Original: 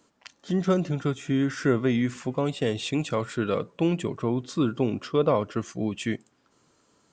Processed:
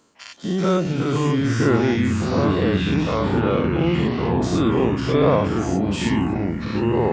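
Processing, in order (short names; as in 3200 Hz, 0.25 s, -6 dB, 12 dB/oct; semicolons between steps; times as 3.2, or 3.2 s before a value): spectral dilation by 0.12 s; 2.36–4.42 LPF 3000 Hz 12 dB/oct; echoes that change speed 0.343 s, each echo -4 st, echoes 3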